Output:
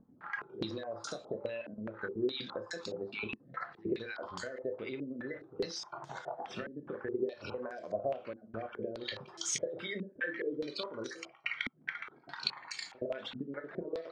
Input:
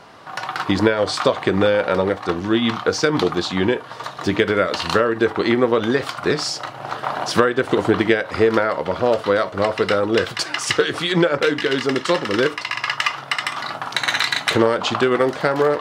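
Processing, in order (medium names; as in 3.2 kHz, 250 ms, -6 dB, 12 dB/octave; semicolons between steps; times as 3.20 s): random holes in the spectrogram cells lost 25%; compression 12:1, threshold -30 dBFS, peak gain reduction 21 dB; on a send at -8 dB: reverberation RT60 0.40 s, pre-delay 21 ms; on the sum: Chebyshev shaper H 3 -12 dB, 5 -24 dB, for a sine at -15 dBFS; upward compressor, threshold -46 dBFS; spectral noise reduction 8 dB; pre-echo 79 ms -21.5 dB; tape speed +12%; step-sequenced low-pass 4.8 Hz 250–6800 Hz; trim -3.5 dB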